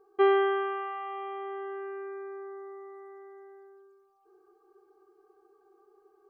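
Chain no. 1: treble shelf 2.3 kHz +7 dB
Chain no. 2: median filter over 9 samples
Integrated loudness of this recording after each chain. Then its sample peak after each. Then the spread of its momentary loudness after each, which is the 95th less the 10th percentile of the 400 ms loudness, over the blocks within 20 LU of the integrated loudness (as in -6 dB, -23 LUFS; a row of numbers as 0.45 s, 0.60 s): -30.5 LUFS, -31.5 LUFS; -12.5 dBFS, -13.5 dBFS; 23 LU, 24 LU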